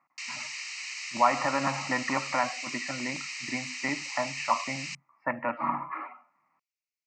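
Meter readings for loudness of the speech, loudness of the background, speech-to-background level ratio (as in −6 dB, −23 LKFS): −31.0 LKFS, −35.5 LKFS, 4.5 dB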